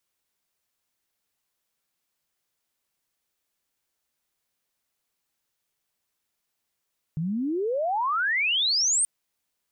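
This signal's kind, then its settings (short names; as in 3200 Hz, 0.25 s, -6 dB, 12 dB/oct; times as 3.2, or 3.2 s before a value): chirp logarithmic 150 Hz -> 9100 Hz -25 dBFS -> -19.5 dBFS 1.88 s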